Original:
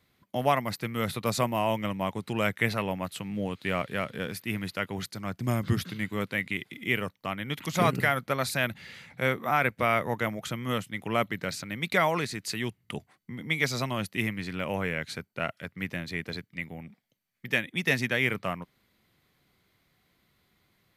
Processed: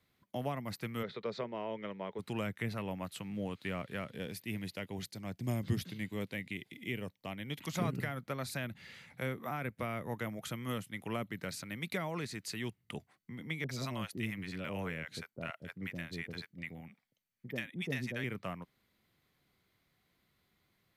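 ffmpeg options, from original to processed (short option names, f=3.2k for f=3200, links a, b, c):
-filter_complex "[0:a]asplit=3[a][b][c];[a]afade=t=out:st=1.02:d=0.02[d];[b]highpass=240,equalizer=f=270:t=q:w=4:g=-8,equalizer=f=430:t=q:w=4:g=8,equalizer=f=750:t=q:w=4:g=-6,equalizer=f=1.1k:t=q:w=4:g=-5,equalizer=f=2.7k:t=q:w=4:g=-8,lowpass=f=4k:w=0.5412,lowpass=f=4k:w=1.3066,afade=t=in:st=1.02:d=0.02,afade=t=out:st=2.18:d=0.02[e];[c]afade=t=in:st=2.18:d=0.02[f];[d][e][f]amix=inputs=3:normalize=0,asettb=1/sr,asplit=3[g][h][i];[g]atrim=end=4.114[j];[h]atrim=start=4.11:end=7.64,asetpts=PTS-STARTPTS,afade=t=in:d=0.004:c=qsin,afade=t=out:st=3.526:d=0.004:c=qsin,equalizer=f=1.3k:t=o:w=0.72:g=-10[k];[i]atrim=start=7.636[l];[j][k]acrossfade=d=0.004:c1=hsin:c2=qsin[m];[m][l]acrossfade=d=0.004:c1=qsin:c2=hsin,asettb=1/sr,asplit=3[n][o][p];[n]atrim=end=9.074[q];[o]atrim=start=9.07:end=12.03,asetpts=PTS-STARTPTS,afade=t=in:d=0.004:c=qsin,afade=t=out:st=2.956:d=0.004:c=qsin,equalizer=f=11k:w=1.5:g=6[r];[p]atrim=start=12.026[s];[q][r]acrossfade=d=0.004:c1=hsin:c2=qsin[t];[t][s]acrossfade=d=0.004:c1=qsin:c2=hsin,asettb=1/sr,asplit=3[u][v][w];[u]atrim=end=13.644[x];[v]atrim=start=13.64:end=18.24,asetpts=PTS-STARTPTS,afade=t=in:d=0.004:c=qsin,afade=t=out:st=4.596:d=0.004:c=qsin,acrossover=split=650[y][z];[z]adelay=50[aa];[y][aa]amix=inputs=2:normalize=0,atrim=end_sample=202860[ab];[w]atrim=start=18.236[ac];[x][ab]acrossfade=d=0.004:c1=hsin:c2=qsin[ad];[ad][ac]acrossfade=d=0.004:c1=qsin:c2=hsin,acrossover=split=380[ae][af];[af]acompressor=threshold=-31dB:ratio=6[ag];[ae][ag]amix=inputs=2:normalize=0,volume=-6.5dB"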